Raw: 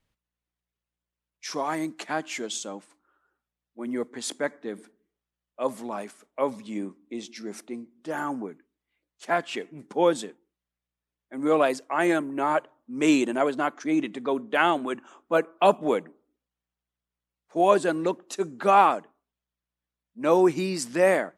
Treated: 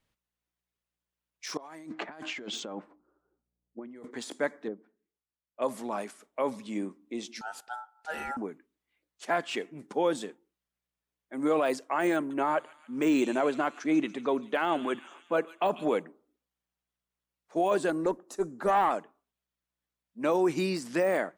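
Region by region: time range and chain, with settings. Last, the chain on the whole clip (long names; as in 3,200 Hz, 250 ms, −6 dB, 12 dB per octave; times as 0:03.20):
0:01.57–0:04.11: low-pass that shuts in the quiet parts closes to 390 Hz, open at −24 dBFS + compressor whose output falls as the input rises −41 dBFS
0:04.67–0:05.62: treble cut that deepens with the level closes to 690 Hz, closed at −33 dBFS + expander for the loud parts, over −48 dBFS
0:07.41–0:08.37: parametric band 1,100 Hz −9.5 dB 1 octave + ring modulation 1,100 Hz
0:12.16–0:15.98: high-shelf EQ 5,300 Hz −5.5 dB + delay with a high-pass on its return 143 ms, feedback 60%, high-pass 3,000 Hz, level −12.5 dB
0:17.90–0:18.91: parametric band 3,000 Hz −13 dB 1.3 octaves + tube saturation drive 13 dB, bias 0.3
whole clip: de-essing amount 85%; low-shelf EQ 160 Hz −5 dB; brickwall limiter −17.5 dBFS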